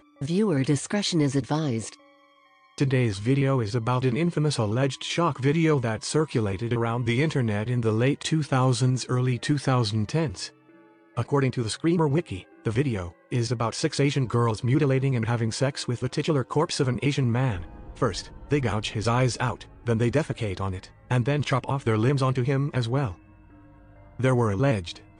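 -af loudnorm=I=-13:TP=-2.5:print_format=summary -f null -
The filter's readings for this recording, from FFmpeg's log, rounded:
Input Integrated:    -25.4 LUFS
Input True Peak:     -12.8 dBTP
Input LRA:             2.7 LU
Input Threshold:     -36.0 LUFS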